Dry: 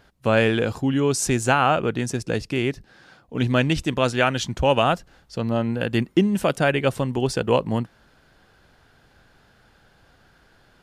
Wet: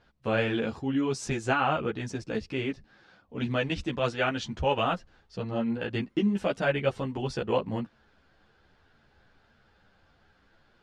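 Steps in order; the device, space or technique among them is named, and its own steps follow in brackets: string-machine ensemble chorus (ensemble effect; LPF 5000 Hz 12 dB/oct); gain -4 dB

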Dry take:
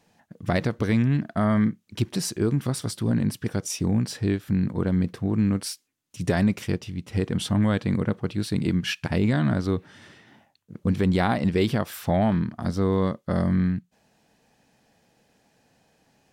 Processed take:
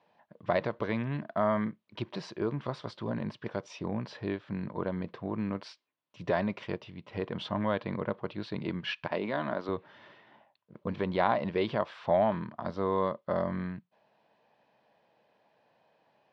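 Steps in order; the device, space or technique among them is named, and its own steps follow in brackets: kitchen radio (speaker cabinet 170–3900 Hz, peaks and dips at 180 Hz -4 dB, 260 Hz -7 dB, 600 Hz +8 dB, 1000 Hz +10 dB); 9.08–9.69 HPF 230 Hz 12 dB/oct; gain -6 dB

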